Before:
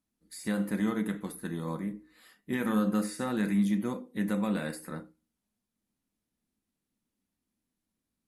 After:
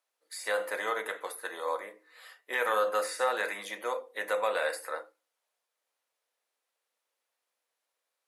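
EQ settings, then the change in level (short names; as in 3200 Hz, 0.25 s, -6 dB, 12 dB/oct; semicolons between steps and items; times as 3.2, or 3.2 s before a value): Chebyshev high-pass 500 Hz, order 4; high shelf 5900 Hz -7 dB; +8.5 dB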